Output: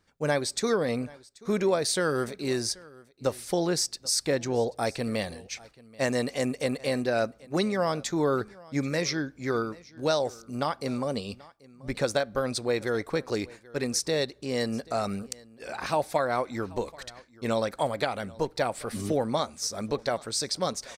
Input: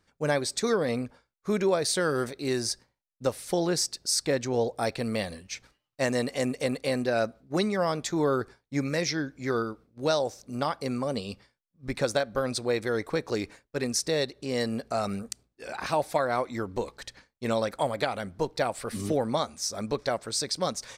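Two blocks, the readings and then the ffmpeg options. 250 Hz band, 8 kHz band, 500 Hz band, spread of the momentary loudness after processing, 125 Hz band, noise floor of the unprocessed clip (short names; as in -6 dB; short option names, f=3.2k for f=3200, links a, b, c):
0.0 dB, 0.0 dB, 0.0 dB, 9 LU, 0.0 dB, -82 dBFS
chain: -af "aecho=1:1:784:0.075"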